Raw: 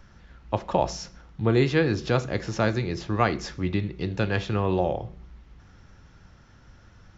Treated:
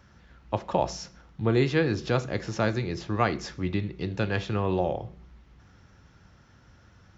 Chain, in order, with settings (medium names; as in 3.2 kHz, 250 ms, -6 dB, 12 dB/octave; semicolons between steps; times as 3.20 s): high-pass 57 Hz; trim -2 dB